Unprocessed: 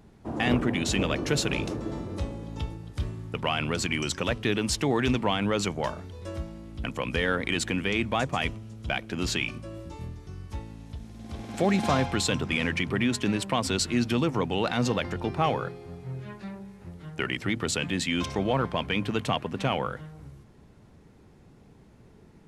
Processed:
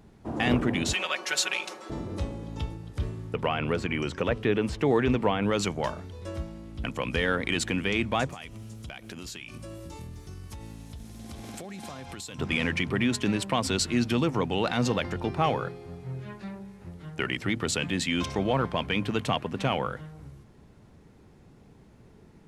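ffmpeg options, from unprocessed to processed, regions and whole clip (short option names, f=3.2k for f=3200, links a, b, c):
-filter_complex "[0:a]asettb=1/sr,asplit=3[a][b][c];[a]atrim=end=0.934[d];[b]atrim=start=0.93:end=1.9,asetpts=PTS-STARTPTS,afade=t=in:d=0.004:c=qsin,afade=t=out:st=0.966:d=0.004:c=qsin,highpass=880,aecho=1:1:5.4:0.99,atrim=end_sample=42777[e];[c]atrim=start=1.896[f];[d][e]acrossfade=d=0.004:c1=hsin:c2=qsin[g];[g][f]acrossfade=d=0.004:c1=qsin:c2=hsin,asettb=1/sr,asplit=3[h][i][j];[h]atrim=end=2.934[k];[i]atrim=start=2.93:end=5.5,asetpts=PTS-STARTPTS,afade=t=in:d=0.004:c=qsin,afade=t=out:st=2.566:d=0.004:c=qsin,equalizer=f=460:t=o:w=0.43:g=5.5,acrossover=split=2700[l][m];[m]acompressor=threshold=-47dB:ratio=4:attack=1:release=60[n];[l][n]amix=inputs=2:normalize=0[o];[j]atrim=start=5.496[p];[k][o]acrossfade=d=0.004:c1=hsin:c2=qsin[q];[q][p]acrossfade=d=0.004:c1=qsin:c2=hsin,asettb=1/sr,asplit=3[r][s][t];[r]atrim=end=8.304[u];[s]atrim=start=8.3:end=12.39,asetpts=PTS-STARTPTS,afade=t=in:d=0.004:c=qsin,afade=t=out:st=4.086:d=0.004:c=qsin,aemphasis=mode=production:type=50kf,acompressor=threshold=-36dB:ratio=12:attack=3.2:release=140:knee=1:detection=peak[v];[t]atrim=start=12.386[w];[u][v]acrossfade=d=0.004:c1=hsin:c2=qsin[x];[x][w]acrossfade=d=0.004:c1=qsin:c2=hsin"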